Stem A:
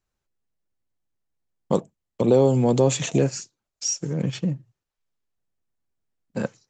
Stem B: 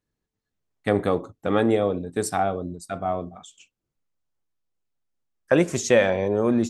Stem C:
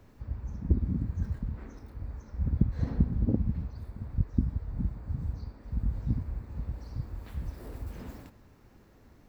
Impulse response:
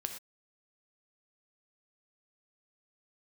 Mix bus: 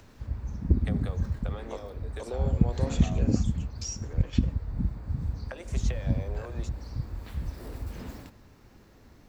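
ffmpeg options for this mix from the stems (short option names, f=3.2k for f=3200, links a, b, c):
-filter_complex "[0:a]acompressor=mode=upward:threshold=-26dB:ratio=2.5,highpass=570,highshelf=f=4.7k:g=-12,volume=-9.5dB,asplit=2[a][b];[b]volume=-9.5dB[c];[1:a]highpass=f=430:w=0.5412,highpass=f=430:w=1.3066,acrossover=split=830|3800[d][e][f];[d]acompressor=threshold=-25dB:ratio=4[g];[e]acompressor=threshold=-35dB:ratio=4[h];[f]acompressor=threshold=-45dB:ratio=4[i];[g][h][i]amix=inputs=3:normalize=0,volume=-8dB[j];[2:a]volume=2.5dB[k];[a][j]amix=inputs=2:normalize=0,acompressor=threshold=-39dB:ratio=6,volume=0dB[l];[3:a]atrim=start_sample=2205[m];[c][m]afir=irnorm=-1:irlink=0[n];[k][l][n]amix=inputs=3:normalize=0,equalizer=f=4.6k:t=o:w=1.9:g=4.5"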